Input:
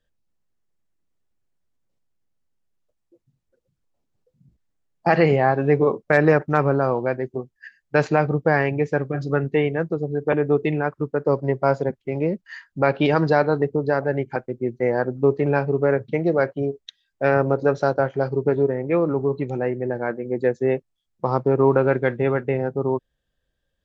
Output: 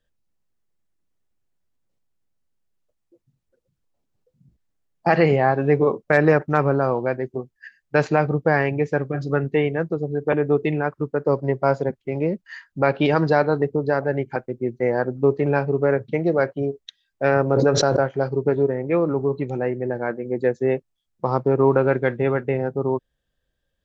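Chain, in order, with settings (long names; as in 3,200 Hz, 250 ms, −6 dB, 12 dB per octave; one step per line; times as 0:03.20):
0:17.52–0:18.02: background raised ahead of every attack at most 21 dB per second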